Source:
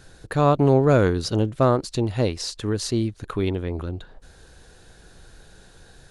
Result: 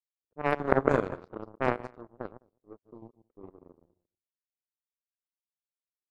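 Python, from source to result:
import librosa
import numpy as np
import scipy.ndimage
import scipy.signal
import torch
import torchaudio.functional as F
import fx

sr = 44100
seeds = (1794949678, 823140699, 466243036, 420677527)

y = fx.reverse_delay_fb(x, sr, ms=104, feedback_pct=58, wet_db=-5)
y = fx.peak_eq(y, sr, hz=440.0, db=13.5, octaves=2.6)
y = fx.power_curve(y, sr, exponent=3.0)
y = fx.env_lowpass(y, sr, base_hz=540.0, full_db=-17.0)
y = y * 10.0 ** (-9.0 / 20.0)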